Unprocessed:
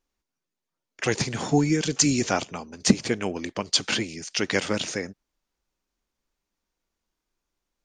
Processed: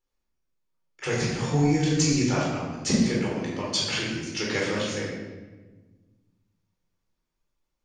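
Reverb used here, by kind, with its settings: shoebox room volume 940 m³, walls mixed, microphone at 4.2 m; gain -10 dB

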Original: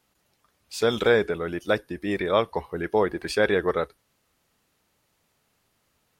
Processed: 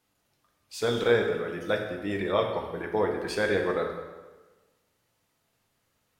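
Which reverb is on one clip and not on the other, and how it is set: plate-style reverb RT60 1.3 s, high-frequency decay 0.8×, DRR 2 dB; gain -5.5 dB

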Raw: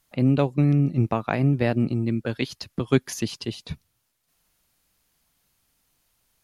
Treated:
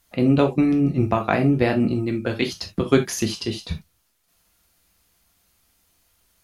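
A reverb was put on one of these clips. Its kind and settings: non-linear reverb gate 0.1 s falling, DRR 3.5 dB; gain +3.5 dB

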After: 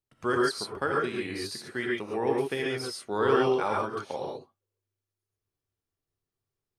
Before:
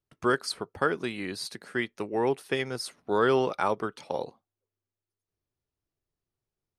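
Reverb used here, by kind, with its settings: non-linear reverb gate 0.16 s rising, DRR -2.5 dB; gain -4.5 dB

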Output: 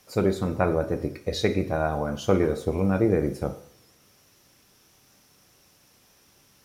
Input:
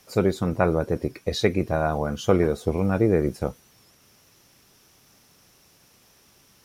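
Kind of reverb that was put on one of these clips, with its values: two-slope reverb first 0.6 s, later 2.1 s, from -28 dB, DRR 7.5 dB; gain -2.5 dB

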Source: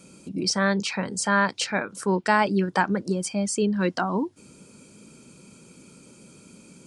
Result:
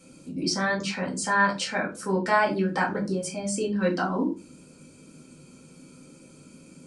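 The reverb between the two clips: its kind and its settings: shoebox room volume 140 m³, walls furnished, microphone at 2.1 m; gain -6.5 dB

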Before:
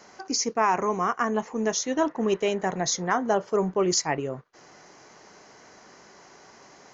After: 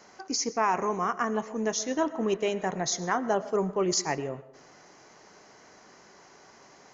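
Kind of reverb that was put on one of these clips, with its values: digital reverb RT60 0.76 s, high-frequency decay 0.55×, pre-delay 70 ms, DRR 16 dB; gain -3 dB

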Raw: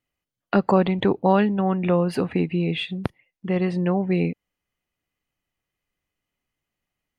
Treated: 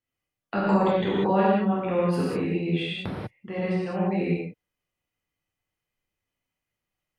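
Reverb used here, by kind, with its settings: non-linear reverb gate 0.22 s flat, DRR -7.5 dB; gain -10 dB

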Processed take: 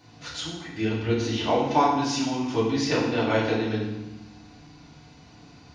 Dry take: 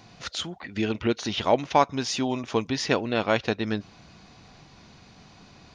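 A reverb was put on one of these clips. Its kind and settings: FDN reverb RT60 0.95 s, low-frequency decay 1.6×, high-frequency decay 0.9×, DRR -8 dB; gain -9 dB

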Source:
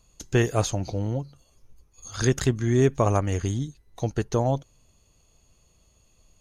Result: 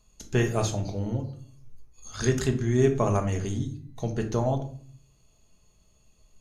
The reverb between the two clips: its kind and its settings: shoebox room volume 500 m³, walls furnished, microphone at 1.4 m; gain -4 dB

